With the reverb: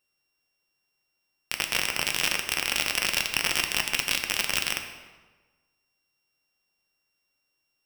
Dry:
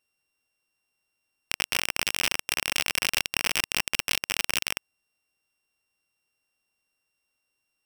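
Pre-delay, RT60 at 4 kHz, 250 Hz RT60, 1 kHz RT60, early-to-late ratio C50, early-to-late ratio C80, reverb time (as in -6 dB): 4 ms, 0.95 s, 1.4 s, 1.3 s, 7.5 dB, 9.0 dB, 1.3 s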